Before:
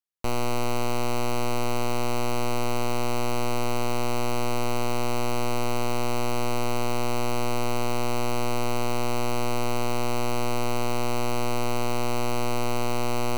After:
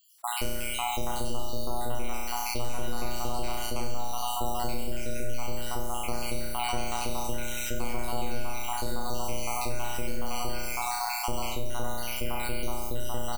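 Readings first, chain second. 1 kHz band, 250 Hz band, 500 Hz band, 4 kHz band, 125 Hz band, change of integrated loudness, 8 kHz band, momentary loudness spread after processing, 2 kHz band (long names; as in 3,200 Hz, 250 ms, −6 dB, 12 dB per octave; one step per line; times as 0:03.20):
−4.0 dB, −8.5 dB, −7.5 dB, −2.0 dB, −7.5 dB, −4.5 dB, 0.0 dB, 4 LU, −4.0 dB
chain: time-frequency cells dropped at random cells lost 78%
high-shelf EQ 7,500 Hz +7.5 dB
double-tracking delay 31 ms −10 dB
flutter between parallel walls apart 5.9 metres, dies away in 1 s
envelope flattener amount 50%
level −8.5 dB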